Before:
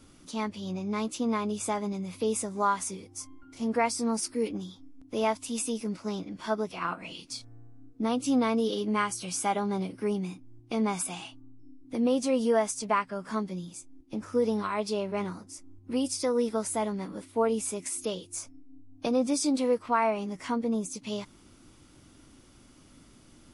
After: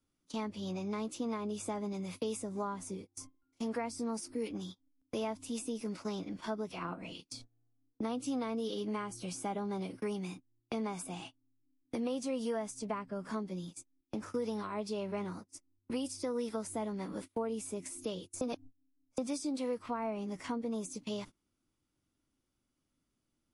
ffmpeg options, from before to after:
ffmpeg -i in.wav -filter_complex "[0:a]asplit=3[link_01][link_02][link_03];[link_01]atrim=end=18.412[link_04];[link_02]atrim=start=18.408:end=19.182,asetpts=PTS-STARTPTS,areverse[link_05];[link_03]atrim=start=19.178[link_06];[link_04][link_05]acrossfade=duration=0.004:curve1=hsin:curve2=hsin[link_07];[link_07][link_06]acrossfade=duration=0.004:curve1=hsin:curve2=hsin,agate=range=-27dB:threshold=-42dB:ratio=16:detection=peak,acrossover=split=330|700[link_08][link_09][link_10];[link_08]acompressor=threshold=-40dB:ratio=4[link_11];[link_09]acompressor=threshold=-42dB:ratio=4[link_12];[link_10]acompressor=threshold=-45dB:ratio=4[link_13];[link_11][link_12][link_13]amix=inputs=3:normalize=0" out.wav

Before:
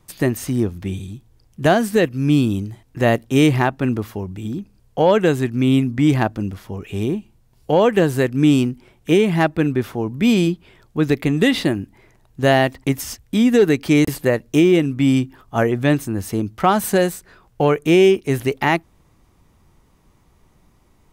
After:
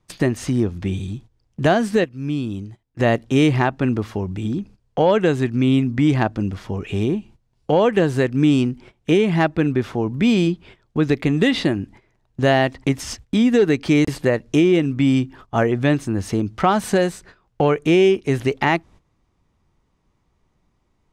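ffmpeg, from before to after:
ffmpeg -i in.wav -filter_complex "[0:a]asplit=3[link_01][link_02][link_03];[link_01]atrim=end=2.04,asetpts=PTS-STARTPTS,afade=type=out:start_time=1.88:duration=0.16:curve=log:silence=0.298538[link_04];[link_02]atrim=start=2.04:end=2.99,asetpts=PTS-STARTPTS,volume=-10.5dB[link_05];[link_03]atrim=start=2.99,asetpts=PTS-STARTPTS,afade=type=in:duration=0.16:curve=log:silence=0.298538[link_06];[link_04][link_05][link_06]concat=n=3:v=0:a=1,lowpass=6700,agate=range=-15dB:threshold=-43dB:ratio=16:detection=peak,acompressor=threshold=-29dB:ratio=1.5,volume=5dB" out.wav

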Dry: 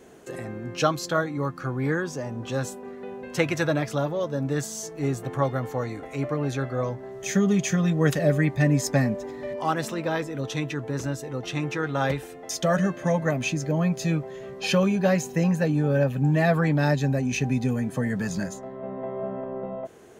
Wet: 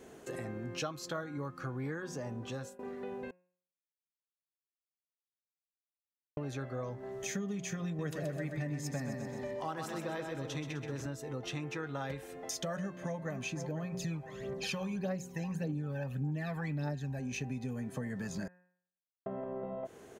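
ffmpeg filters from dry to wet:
ffmpeg -i in.wav -filter_complex "[0:a]asettb=1/sr,asplit=3[link_01][link_02][link_03];[link_01]atrim=end=7.864[link_04];[link_02]atrim=start=7.86:end=11.06,asetpts=PTS-STARTPTS,afade=type=in:duration=0.004:curve=qsin,afade=type=out:start_time=3.196:duration=0.004:curve=qsin,aecho=1:1:128|256|384|512|640|768:0.501|0.231|0.106|0.0488|0.0224|0.0103,atrim=end_sample=141120[link_05];[link_03]atrim=start=11.056[link_06];[link_04][link_05]acrossfade=duration=0.004:curve1=hsin:curve2=qsin[link_07];[link_07][link_06]acrossfade=duration=0.004:curve1=qsin:curve2=hsin,asplit=2[link_08][link_09];[link_09]afade=type=in:start_time=12.8:duration=0.01,afade=type=out:start_time=13.35:duration=0.01,aecho=0:1:500|1000|1500|2000:0.298538|0.104488|0.0365709|0.0127998[link_10];[link_08][link_10]amix=inputs=2:normalize=0,asettb=1/sr,asplit=3[link_11][link_12][link_13];[link_11]atrim=end=13.944[link_14];[link_12]atrim=start=13.94:end=17.2,asetpts=PTS-STARTPTS,afade=type=in:duration=0.004:curve=qsin,afade=type=out:start_time=3.256:duration=0.004:curve=qsin,aphaser=in_gain=1:out_gain=1:delay=1.3:decay=0.6:speed=1.7:type=triangular[link_15];[link_13]atrim=start=17.196[link_16];[link_14][link_15]acrossfade=duration=0.004:curve1=hsin:curve2=qsin[link_17];[link_17][link_16]acrossfade=duration=0.004:curve1=qsin:curve2=hsin,asplit=6[link_18][link_19][link_20][link_21][link_22][link_23];[link_18]atrim=end=2.79,asetpts=PTS-STARTPTS,afade=type=out:start_time=2.3:duration=0.49:silence=0.0891251[link_24];[link_19]atrim=start=2.79:end=3.31,asetpts=PTS-STARTPTS,afade=type=in:duration=0.004:curve=hsin:silence=0.0891251,afade=type=out:start_time=0.516:duration=0.004:curve=hsin[link_25];[link_20]atrim=start=3.31:end=6.37,asetpts=PTS-STARTPTS,volume=0[link_26];[link_21]atrim=start=6.37:end=18.48,asetpts=PTS-STARTPTS,afade=type=in:duration=0.004:curve=hsin,afade=type=out:start_time=12.106:duration=0.004:curve=hsin[link_27];[link_22]atrim=start=18.48:end=19.26,asetpts=PTS-STARTPTS,volume=0[link_28];[link_23]atrim=start=19.26,asetpts=PTS-STARTPTS,afade=type=in:duration=0.004:curve=hsin[link_29];[link_24][link_25][link_26][link_27][link_28][link_29]concat=n=6:v=0:a=1,bandreject=frequency=179.9:width_type=h:width=4,bandreject=frequency=359.8:width_type=h:width=4,bandreject=frequency=539.7:width_type=h:width=4,bandreject=frequency=719.6:width_type=h:width=4,bandreject=frequency=899.5:width_type=h:width=4,bandreject=frequency=1079.4:width_type=h:width=4,bandreject=frequency=1259.3:width_type=h:width=4,bandreject=frequency=1439.2:width_type=h:width=4,bandreject=frequency=1619.1:width_type=h:width=4,bandreject=frequency=1799:width_type=h:width=4,bandreject=frequency=1978.9:width_type=h:width=4,bandreject=frequency=2158.8:width_type=h:width=4,bandreject=frequency=2338.7:width_type=h:width=4,bandreject=frequency=2518.6:width_type=h:width=4,bandreject=frequency=2698.5:width_type=h:width=4,acompressor=threshold=-34dB:ratio=4,volume=-3dB" out.wav

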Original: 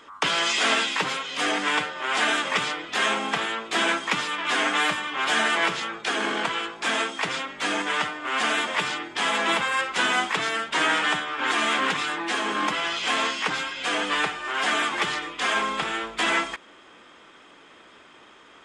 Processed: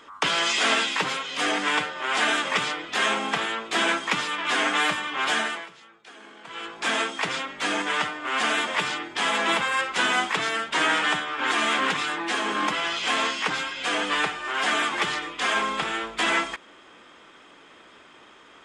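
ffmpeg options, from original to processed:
ffmpeg -i in.wav -filter_complex "[0:a]asplit=3[link_01][link_02][link_03];[link_01]atrim=end=5.66,asetpts=PTS-STARTPTS,afade=type=out:start_time=5.28:duration=0.38:silence=0.0944061[link_04];[link_02]atrim=start=5.66:end=6.44,asetpts=PTS-STARTPTS,volume=-20.5dB[link_05];[link_03]atrim=start=6.44,asetpts=PTS-STARTPTS,afade=type=in:duration=0.38:silence=0.0944061[link_06];[link_04][link_05][link_06]concat=n=3:v=0:a=1" out.wav

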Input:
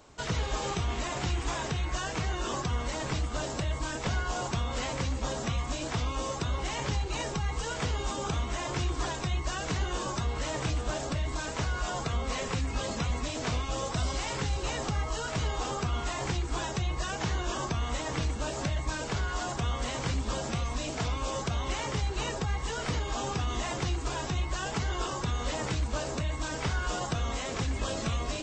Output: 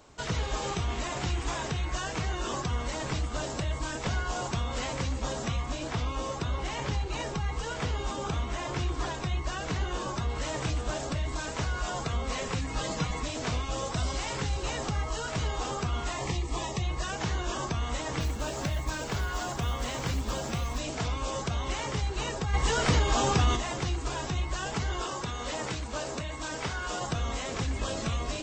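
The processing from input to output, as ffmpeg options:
ffmpeg -i in.wav -filter_complex "[0:a]asettb=1/sr,asplit=3[link_01][link_02][link_03];[link_01]atrim=end=5.574[link_04];[link_02]atrim=start=5.57:end=10.3,asetpts=PTS-STARTPTS,afade=type=in:duration=0.004:curve=qsin,afade=type=out:start_time=4.726:duration=0.004:curve=qsin,highshelf=frequency=6500:gain=-7.5[link_05];[link_03]atrim=start=10.296[link_06];[link_04][link_05]acrossfade=duration=0.004:curve1=hsin:curve2=qsin[link_07];[link_07][link_06]acrossfade=duration=0.004:curve1=qsin:curve2=hsin,asettb=1/sr,asplit=3[link_08][link_09][link_10];[link_08]atrim=end=12.614[link_11];[link_09]atrim=start=12.61:end=13.23,asetpts=PTS-STARTPTS,afade=type=in:duration=0.004:curve=qsin,afade=type=out:start_time=0.616:duration=0.004:curve=qsin,aecho=1:1:6.4:0.65,atrim=end_sample=27342[link_12];[link_10]atrim=start=13.226[link_13];[link_11][link_12]acrossfade=duration=0.004:curve1=hsin:curve2=qsin[link_14];[link_14][link_13]acrossfade=duration=0.004:curve1=qsin:curve2=hsin,asettb=1/sr,asplit=3[link_15][link_16][link_17];[link_15]atrim=end=16.174[link_18];[link_16]atrim=start=16.17:end=16.82,asetpts=PTS-STARTPTS,afade=type=in:duration=0.004:curve=qsin,afade=type=out:start_time=0.646:duration=0.004:curve=qsin,asuperstop=centerf=1500:order=8:qfactor=3.8[link_19];[link_17]atrim=start=16.816[link_20];[link_18][link_19]acrossfade=duration=0.004:curve1=hsin:curve2=qsin[link_21];[link_21][link_20]acrossfade=duration=0.004:curve1=qsin:curve2=hsin,asettb=1/sr,asplit=3[link_22][link_23][link_24];[link_22]atrim=end=18.204[link_25];[link_23]atrim=start=18.2:end=20.8,asetpts=PTS-STARTPTS,afade=type=in:duration=0.004:curve=qsin,afade=type=out:start_time=2.596:duration=0.004:curve=qsin,acrusher=bits=6:mode=log:mix=0:aa=0.000001[link_26];[link_24]atrim=start=20.796[link_27];[link_25][link_26]acrossfade=duration=0.004:curve1=hsin:curve2=qsin[link_28];[link_28][link_27]acrossfade=duration=0.004:curve1=qsin:curve2=hsin,asplit=3[link_29][link_30][link_31];[link_29]afade=type=out:start_time=22.53:duration=0.02[link_32];[link_30]acontrast=88,afade=type=in:start_time=22.53:duration=0.02,afade=type=out:start_time=23.55:duration=0.02[link_33];[link_31]afade=type=in:start_time=23.55:duration=0.02[link_34];[link_32][link_33][link_34]amix=inputs=3:normalize=0,asettb=1/sr,asplit=3[link_35][link_36][link_37];[link_35]atrim=end=25.004[link_38];[link_36]atrim=start=25:end=27.02,asetpts=PTS-STARTPTS,afade=type=in:duration=0.004:curve=qsin,afade=type=out:start_time=2.016:duration=0.004:curve=qsin,lowshelf=frequency=140:gain=-9[link_39];[link_37]atrim=start=27.016[link_40];[link_38][link_39]acrossfade=duration=0.004:curve1=hsin:curve2=qsin[link_41];[link_41][link_40]acrossfade=duration=0.004:curve1=qsin:curve2=hsin" out.wav

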